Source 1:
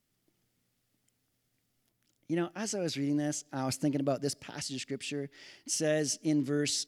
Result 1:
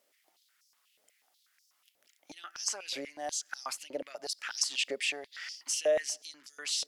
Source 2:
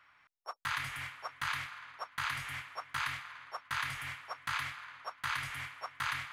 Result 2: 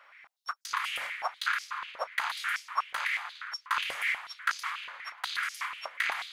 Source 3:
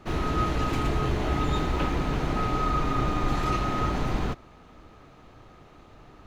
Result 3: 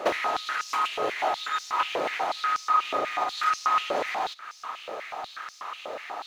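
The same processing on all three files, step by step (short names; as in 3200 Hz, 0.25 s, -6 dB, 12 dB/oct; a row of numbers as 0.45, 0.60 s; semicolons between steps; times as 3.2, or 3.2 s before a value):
compressor 16:1, threshold -36 dBFS; stepped high-pass 8.2 Hz 550–5400 Hz; normalise peaks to -12 dBFS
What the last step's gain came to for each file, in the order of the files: +6.0, +5.0, +14.5 dB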